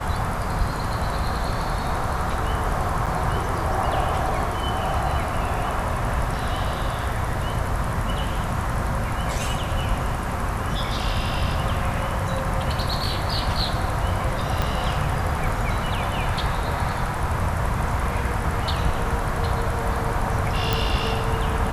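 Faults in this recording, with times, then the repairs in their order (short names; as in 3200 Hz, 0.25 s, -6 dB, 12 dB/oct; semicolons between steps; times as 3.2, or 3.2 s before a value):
3.06–3.07 gap 6.8 ms
14.62 pop -9 dBFS
20.73 pop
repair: de-click; interpolate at 3.06, 6.8 ms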